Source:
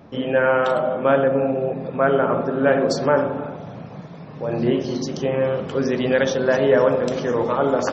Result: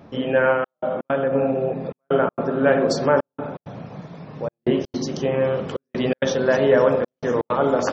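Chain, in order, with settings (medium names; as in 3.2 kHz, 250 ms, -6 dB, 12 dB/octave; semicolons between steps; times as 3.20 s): 0.52–1.33 s: compression 2:1, threshold -20 dBFS, peak gain reduction 5 dB; trance gate "xxxxxxx..xx.xx" 164 bpm -60 dB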